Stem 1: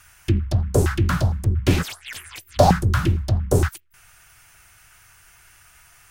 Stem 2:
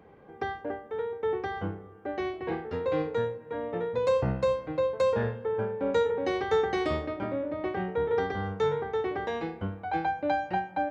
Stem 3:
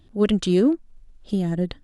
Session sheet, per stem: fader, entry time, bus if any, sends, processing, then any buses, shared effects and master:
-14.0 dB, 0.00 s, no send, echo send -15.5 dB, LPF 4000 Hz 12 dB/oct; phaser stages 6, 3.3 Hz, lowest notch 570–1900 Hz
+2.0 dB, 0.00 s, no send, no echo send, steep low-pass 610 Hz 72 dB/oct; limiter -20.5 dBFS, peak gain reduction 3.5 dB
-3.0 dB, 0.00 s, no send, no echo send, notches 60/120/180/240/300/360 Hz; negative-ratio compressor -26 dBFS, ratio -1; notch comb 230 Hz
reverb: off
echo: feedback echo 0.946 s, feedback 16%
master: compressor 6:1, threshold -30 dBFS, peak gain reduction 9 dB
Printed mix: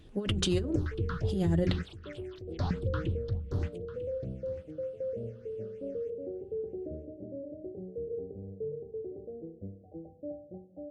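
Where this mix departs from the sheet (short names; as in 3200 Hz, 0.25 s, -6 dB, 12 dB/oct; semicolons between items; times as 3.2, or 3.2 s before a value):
stem 2 +2.0 dB -> -9.0 dB; master: missing compressor 6:1, threshold -30 dBFS, peak gain reduction 9 dB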